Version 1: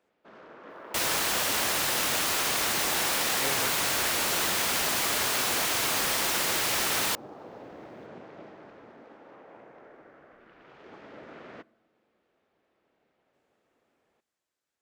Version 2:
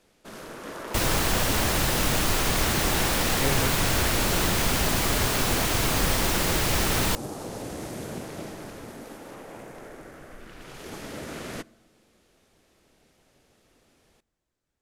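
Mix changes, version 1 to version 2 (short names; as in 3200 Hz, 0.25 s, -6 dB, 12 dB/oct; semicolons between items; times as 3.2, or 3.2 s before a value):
first sound: remove tape spacing loss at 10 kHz 44 dB; master: remove HPF 780 Hz 6 dB/oct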